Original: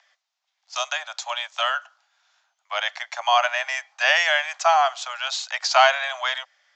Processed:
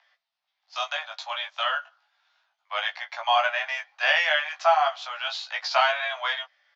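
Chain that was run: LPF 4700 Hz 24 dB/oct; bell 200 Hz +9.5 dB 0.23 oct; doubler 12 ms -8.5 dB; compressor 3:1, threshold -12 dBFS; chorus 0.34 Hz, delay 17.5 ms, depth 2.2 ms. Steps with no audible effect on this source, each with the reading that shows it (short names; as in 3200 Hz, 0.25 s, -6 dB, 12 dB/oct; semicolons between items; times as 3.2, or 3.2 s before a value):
bell 200 Hz: input band starts at 480 Hz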